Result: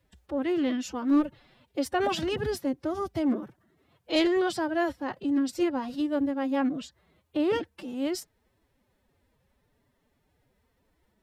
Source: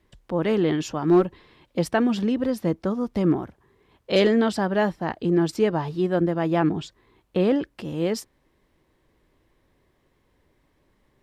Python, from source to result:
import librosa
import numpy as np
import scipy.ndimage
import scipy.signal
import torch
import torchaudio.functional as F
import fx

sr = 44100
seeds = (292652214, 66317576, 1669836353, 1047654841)

y = fx.pitch_keep_formants(x, sr, semitones=8.5)
y = fx.high_shelf(y, sr, hz=7300.0, db=5.5)
y = y * 10.0 ** (-5.0 / 20.0)